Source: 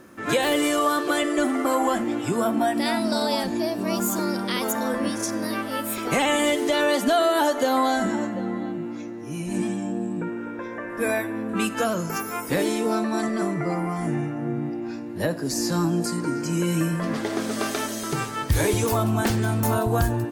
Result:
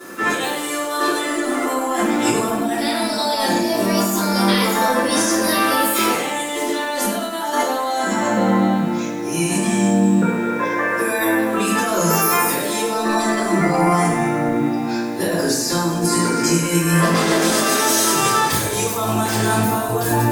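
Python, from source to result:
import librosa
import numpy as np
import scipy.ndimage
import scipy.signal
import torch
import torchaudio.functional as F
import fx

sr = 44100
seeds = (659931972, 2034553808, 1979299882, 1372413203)

y = scipy.signal.sosfilt(scipy.signal.butter(2, 240.0, 'highpass', fs=sr, output='sos'), x)
y = fx.high_shelf(y, sr, hz=4900.0, db=8.0)
y = fx.over_compress(y, sr, threshold_db=-29.0, ratio=-1.0)
y = fx.room_shoebox(y, sr, seeds[0], volume_m3=78.0, walls='mixed', distance_m=3.2)
y = fx.echo_crushed(y, sr, ms=102, feedback_pct=55, bits=6, wet_db=-10)
y = y * librosa.db_to_amplitude(-3.0)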